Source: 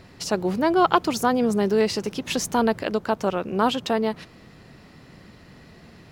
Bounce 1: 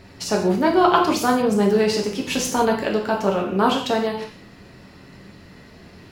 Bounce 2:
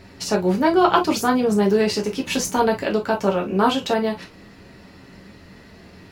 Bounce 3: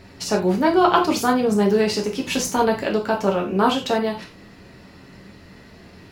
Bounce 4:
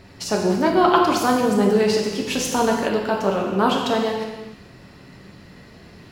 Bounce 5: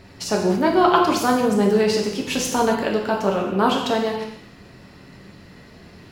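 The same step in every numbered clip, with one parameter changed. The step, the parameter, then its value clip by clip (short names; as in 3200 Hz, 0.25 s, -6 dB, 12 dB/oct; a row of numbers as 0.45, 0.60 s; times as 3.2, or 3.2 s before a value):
non-linear reverb, gate: 210, 80, 120, 450, 310 ms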